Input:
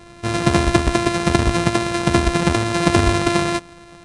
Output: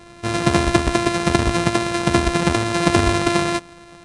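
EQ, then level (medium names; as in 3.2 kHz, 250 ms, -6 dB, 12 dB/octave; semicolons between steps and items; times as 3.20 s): bass shelf 140 Hz -3.5 dB; 0.0 dB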